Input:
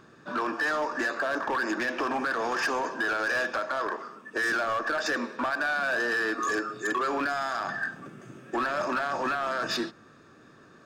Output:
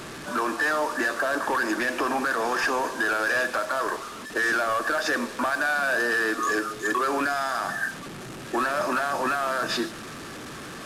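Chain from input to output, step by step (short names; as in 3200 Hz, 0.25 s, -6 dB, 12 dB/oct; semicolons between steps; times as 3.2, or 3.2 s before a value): delta modulation 64 kbps, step -35.5 dBFS; gain +3 dB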